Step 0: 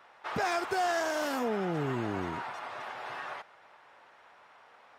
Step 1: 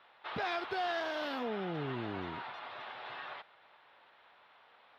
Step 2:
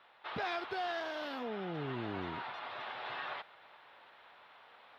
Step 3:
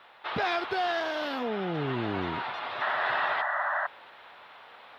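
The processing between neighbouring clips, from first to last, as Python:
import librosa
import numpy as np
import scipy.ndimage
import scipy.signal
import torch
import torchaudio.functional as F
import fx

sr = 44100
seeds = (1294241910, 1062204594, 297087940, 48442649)

y1 = fx.high_shelf_res(x, sr, hz=5300.0, db=-13.0, q=3.0)
y1 = y1 * 10.0 ** (-6.0 / 20.0)
y2 = fx.rider(y1, sr, range_db=10, speed_s=2.0)
y2 = y2 * 10.0 ** (-2.0 / 20.0)
y3 = fx.spec_paint(y2, sr, seeds[0], shape='noise', start_s=2.81, length_s=1.06, low_hz=570.0, high_hz=2000.0, level_db=-38.0)
y3 = y3 * 10.0 ** (8.5 / 20.0)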